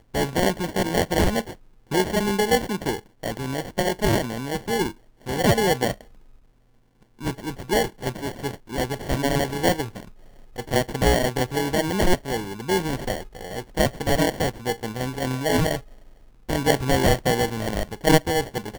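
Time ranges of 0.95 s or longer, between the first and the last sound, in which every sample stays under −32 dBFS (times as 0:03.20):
0:05.93–0:07.21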